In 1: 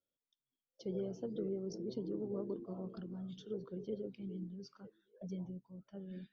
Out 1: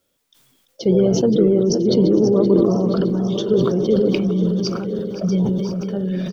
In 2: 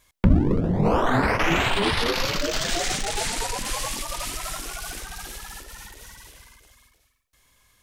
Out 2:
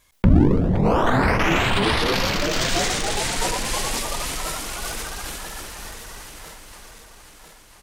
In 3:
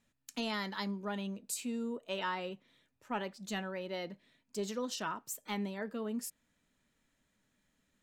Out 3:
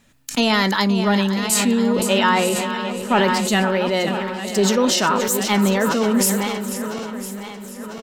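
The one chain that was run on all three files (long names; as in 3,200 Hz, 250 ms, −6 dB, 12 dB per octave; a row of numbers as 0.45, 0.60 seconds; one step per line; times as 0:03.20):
feedback delay that plays each chunk backwards 499 ms, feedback 70%, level −11.5 dB
on a send: repeating echo 522 ms, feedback 48%, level −13 dB
on the sum: level that may fall only so fast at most 25 dB per second
normalise the peak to −3 dBFS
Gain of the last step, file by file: +23.5, +1.0, +18.5 decibels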